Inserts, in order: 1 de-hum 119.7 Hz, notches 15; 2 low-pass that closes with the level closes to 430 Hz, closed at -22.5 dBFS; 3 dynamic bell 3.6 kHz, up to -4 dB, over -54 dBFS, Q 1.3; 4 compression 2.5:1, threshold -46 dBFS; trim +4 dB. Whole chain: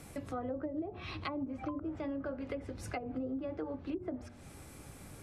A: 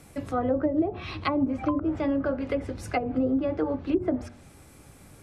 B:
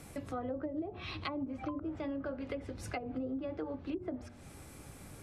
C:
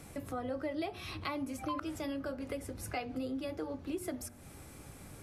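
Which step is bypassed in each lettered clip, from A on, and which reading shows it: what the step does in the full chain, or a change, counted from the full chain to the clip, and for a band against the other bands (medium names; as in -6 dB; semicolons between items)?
4, mean gain reduction 8.5 dB; 3, 4 kHz band +2.5 dB; 2, 8 kHz band +6.0 dB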